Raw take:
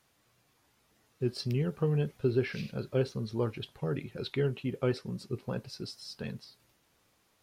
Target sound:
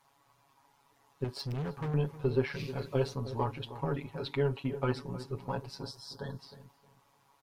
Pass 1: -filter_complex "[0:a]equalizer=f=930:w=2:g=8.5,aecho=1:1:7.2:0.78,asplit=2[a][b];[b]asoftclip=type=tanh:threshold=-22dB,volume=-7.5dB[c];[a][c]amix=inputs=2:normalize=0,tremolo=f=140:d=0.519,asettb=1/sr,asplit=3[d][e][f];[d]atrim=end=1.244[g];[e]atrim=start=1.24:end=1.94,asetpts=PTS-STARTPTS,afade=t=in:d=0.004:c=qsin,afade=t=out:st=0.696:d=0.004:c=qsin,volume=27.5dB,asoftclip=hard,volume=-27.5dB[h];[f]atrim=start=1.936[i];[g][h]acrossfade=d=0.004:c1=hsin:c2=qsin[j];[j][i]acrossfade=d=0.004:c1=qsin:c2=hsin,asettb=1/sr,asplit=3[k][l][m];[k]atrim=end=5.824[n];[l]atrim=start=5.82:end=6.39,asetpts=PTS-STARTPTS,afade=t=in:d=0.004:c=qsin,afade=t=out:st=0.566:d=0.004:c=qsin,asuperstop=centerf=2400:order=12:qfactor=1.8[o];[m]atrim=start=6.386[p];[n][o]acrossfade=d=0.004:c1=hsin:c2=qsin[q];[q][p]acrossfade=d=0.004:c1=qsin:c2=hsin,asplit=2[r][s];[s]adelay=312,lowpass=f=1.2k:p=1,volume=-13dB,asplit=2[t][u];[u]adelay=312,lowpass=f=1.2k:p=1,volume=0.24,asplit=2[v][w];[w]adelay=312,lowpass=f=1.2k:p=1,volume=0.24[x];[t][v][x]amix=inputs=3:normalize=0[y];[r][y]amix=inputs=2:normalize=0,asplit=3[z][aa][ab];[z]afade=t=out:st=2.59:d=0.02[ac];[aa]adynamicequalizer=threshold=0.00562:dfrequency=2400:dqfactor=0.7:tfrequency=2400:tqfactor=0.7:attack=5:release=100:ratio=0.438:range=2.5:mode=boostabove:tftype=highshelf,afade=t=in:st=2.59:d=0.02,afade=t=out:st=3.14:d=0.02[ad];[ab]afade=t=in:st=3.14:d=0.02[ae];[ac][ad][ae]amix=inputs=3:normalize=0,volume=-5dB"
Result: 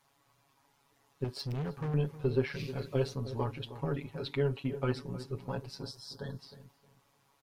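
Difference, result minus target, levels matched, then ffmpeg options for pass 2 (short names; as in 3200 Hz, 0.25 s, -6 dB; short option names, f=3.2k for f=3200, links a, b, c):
1000 Hz band -3.5 dB
-filter_complex "[0:a]equalizer=f=930:w=2:g=15,aecho=1:1:7.2:0.78,asplit=2[a][b];[b]asoftclip=type=tanh:threshold=-22dB,volume=-7.5dB[c];[a][c]amix=inputs=2:normalize=0,tremolo=f=140:d=0.519,asettb=1/sr,asplit=3[d][e][f];[d]atrim=end=1.244[g];[e]atrim=start=1.24:end=1.94,asetpts=PTS-STARTPTS,afade=t=in:d=0.004:c=qsin,afade=t=out:st=0.696:d=0.004:c=qsin,volume=27.5dB,asoftclip=hard,volume=-27.5dB[h];[f]atrim=start=1.936[i];[g][h]acrossfade=d=0.004:c1=hsin:c2=qsin[j];[j][i]acrossfade=d=0.004:c1=qsin:c2=hsin,asettb=1/sr,asplit=3[k][l][m];[k]atrim=end=5.824[n];[l]atrim=start=5.82:end=6.39,asetpts=PTS-STARTPTS,afade=t=in:d=0.004:c=qsin,afade=t=out:st=0.566:d=0.004:c=qsin,asuperstop=centerf=2400:order=12:qfactor=1.8[o];[m]atrim=start=6.386[p];[n][o]acrossfade=d=0.004:c1=hsin:c2=qsin[q];[q][p]acrossfade=d=0.004:c1=qsin:c2=hsin,asplit=2[r][s];[s]adelay=312,lowpass=f=1.2k:p=1,volume=-13dB,asplit=2[t][u];[u]adelay=312,lowpass=f=1.2k:p=1,volume=0.24,asplit=2[v][w];[w]adelay=312,lowpass=f=1.2k:p=1,volume=0.24[x];[t][v][x]amix=inputs=3:normalize=0[y];[r][y]amix=inputs=2:normalize=0,asplit=3[z][aa][ab];[z]afade=t=out:st=2.59:d=0.02[ac];[aa]adynamicequalizer=threshold=0.00562:dfrequency=2400:dqfactor=0.7:tfrequency=2400:tqfactor=0.7:attack=5:release=100:ratio=0.438:range=2.5:mode=boostabove:tftype=highshelf,afade=t=in:st=2.59:d=0.02,afade=t=out:st=3.14:d=0.02[ad];[ab]afade=t=in:st=3.14:d=0.02[ae];[ac][ad][ae]amix=inputs=3:normalize=0,volume=-5dB"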